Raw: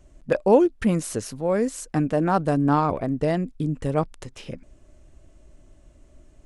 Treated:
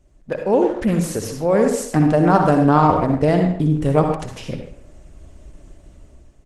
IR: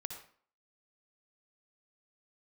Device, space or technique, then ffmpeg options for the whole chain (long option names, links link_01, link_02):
speakerphone in a meeting room: -filter_complex "[0:a]asplit=3[link_01][link_02][link_03];[link_01]afade=type=out:start_time=1.13:duration=0.02[link_04];[link_02]bandreject=frequency=60:width_type=h:width=6,bandreject=frequency=120:width_type=h:width=6,bandreject=frequency=180:width_type=h:width=6,bandreject=frequency=240:width_type=h:width=6,bandreject=frequency=300:width_type=h:width=6,afade=type=in:start_time=1.13:duration=0.02,afade=type=out:start_time=1.8:duration=0.02[link_05];[link_03]afade=type=in:start_time=1.8:duration=0.02[link_06];[link_04][link_05][link_06]amix=inputs=3:normalize=0[link_07];[1:a]atrim=start_sample=2205[link_08];[link_07][link_08]afir=irnorm=-1:irlink=0,asplit=2[link_09][link_10];[link_10]adelay=140,highpass=300,lowpass=3400,asoftclip=type=hard:threshold=-17dB,volume=-14dB[link_11];[link_09][link_11]amix=inputs=2:normalize=0,dynaudnorm=framelen=160:gausssize=9:maxgain=12dB" -ar 48000 -c:a libopus -b:a 16k